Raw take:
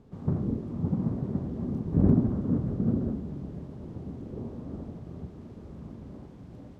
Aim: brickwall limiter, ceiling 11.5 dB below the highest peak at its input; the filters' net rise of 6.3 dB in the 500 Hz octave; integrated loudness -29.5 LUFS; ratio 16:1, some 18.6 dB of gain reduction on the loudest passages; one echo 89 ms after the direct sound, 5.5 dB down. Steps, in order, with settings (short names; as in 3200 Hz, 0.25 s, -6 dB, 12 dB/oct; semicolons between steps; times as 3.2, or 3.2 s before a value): bell 500 Hz +8.5 dB; compressor 16:1, threshold -33 dBFS; limiter -35.5 dBFS; echo 89 ms -5.5 dB; gain +13.5 dB